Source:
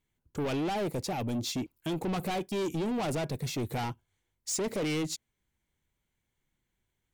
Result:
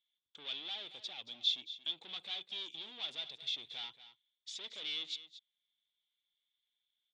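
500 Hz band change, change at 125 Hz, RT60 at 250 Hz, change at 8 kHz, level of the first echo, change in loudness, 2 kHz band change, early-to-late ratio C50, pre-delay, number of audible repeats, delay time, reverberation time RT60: −26.0 dB, below −35 dB, no reverb audible, −18.5 dB, −14.0 dB, −6.5 dB, −8.5 dB, no reverb audible, no reverb audible, 1, 228 ms, no reverb audible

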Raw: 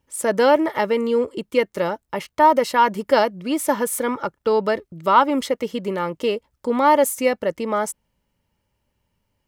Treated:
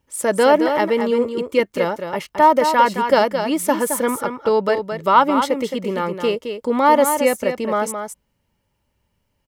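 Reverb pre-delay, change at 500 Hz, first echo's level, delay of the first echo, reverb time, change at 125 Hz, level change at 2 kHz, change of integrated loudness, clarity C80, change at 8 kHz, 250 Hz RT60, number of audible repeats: no reverb audible, +2.0 dB, −7.5 dB, 218 ms, no reverb audible, +2.0 dB, +2.0 dB, +2.0 dB, no reverb audible, +2.0 dB, no reverb audible, 1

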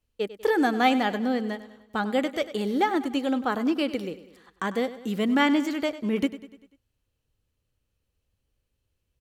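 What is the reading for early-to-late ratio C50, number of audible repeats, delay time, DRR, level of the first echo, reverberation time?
no reverb audible, 4, 98 ms, no reverb audible, −15.0 dB, no reverb audible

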